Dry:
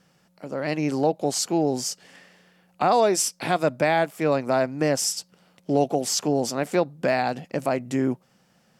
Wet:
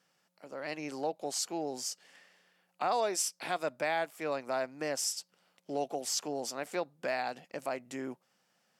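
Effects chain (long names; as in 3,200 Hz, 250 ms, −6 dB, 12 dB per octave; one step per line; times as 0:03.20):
high-pass filter 670 Hz 6 dB per octave
level −8 dB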